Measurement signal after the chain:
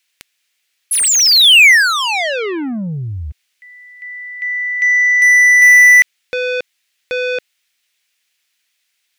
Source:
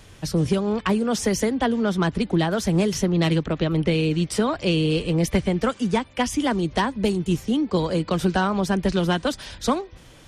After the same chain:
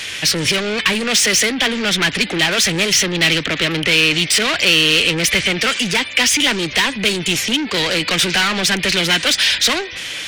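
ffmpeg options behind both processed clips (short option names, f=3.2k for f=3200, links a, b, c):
-filter_complex "[0:a]asoftclip=type=tanh:threshold=-12.5dB,asplit=2[a][b];[b]highpass=f=720:p=1,volume=24dB,asoftclip=type=tanh:threshold=-13.5dB[c];[a][c]amix=inputs=2:normalize=0,lowpass=f=4.1k:p=1,volume=-6dB,highshelf=f=1.5k:t=q:w=1.5:g=11.5,volume=-1dB"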